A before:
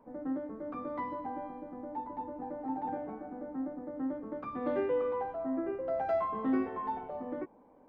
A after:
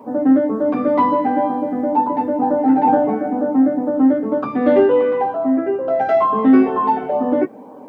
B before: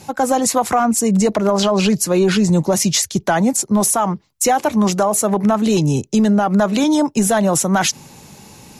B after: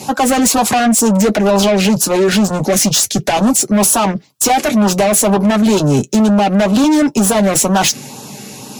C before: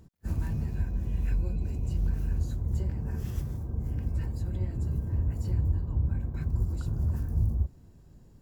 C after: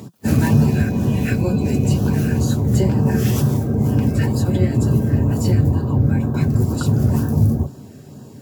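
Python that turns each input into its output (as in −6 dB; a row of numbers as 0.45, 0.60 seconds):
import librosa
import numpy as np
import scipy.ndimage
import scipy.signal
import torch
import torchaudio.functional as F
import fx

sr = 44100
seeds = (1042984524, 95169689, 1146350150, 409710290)

y = scipy.signal.sosfilt(scipy.signal.butter(4, 130.0, 'highpass', fs=sr, output='sos'), x)
y = fx.rider(y, sr, range_db=4, speed_s=2.0)
y = 10.0 ** (-21.0 / 20.0) * np.tanh(y / 10.0 ** (-21.0 / 20.0))
y = fx.notch_comb(y, sr, f0_hz=170.0)
y = fx.filter_lfo_notch(y, sr, shape='sine', hz=2.1, low_hz=910.0, high_hz=2200.0, q=2.4)
y = y * 10.0 ** (-3 / 20.0) / np.max(np.abs(y))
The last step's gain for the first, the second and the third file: +21.0, +13.0, +24.0 decibels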